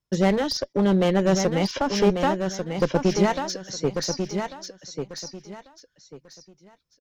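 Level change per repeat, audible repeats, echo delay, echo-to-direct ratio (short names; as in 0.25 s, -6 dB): -12.5 dB, 3, 1.143 s, -6.0 dB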